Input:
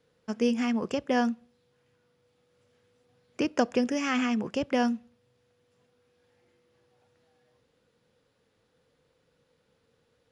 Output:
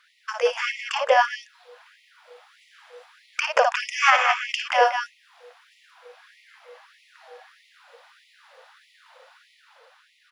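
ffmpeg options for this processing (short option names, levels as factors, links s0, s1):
-filter_complex "[0:a]acompressor=threshold=0.00891:ratio=1.5,firequalizer=gain_entry='entry(160,0);entry(440,-9);entry(940,-3);entry(6800,-13)':delay=0.05:min_phase=1,dynaudnorm=f=160:g=13:m=1.58,lowshelf=f=460:g=9.5,asplit=2[s0][s1];[s1]aecho=0:1:55.39|177.8:0.447|0.447[s2];[s0][s2]amix=inputs=2:normalize=0,alimiter=level_in=13.3:limit=0.891:release=50:level=0:latency=1,afftfilt=real='re*gte(b*sr/1024,460*pow(1900/460,0.5+0.5*sin(2*PI*1.6*pts/sr)))':imag='im*gte(b*sr/1024,460*pow(1900/460,0.5+0.5*sin(2*PI*1.6*pts/sr)))':win_size=1024:overlap=0.75"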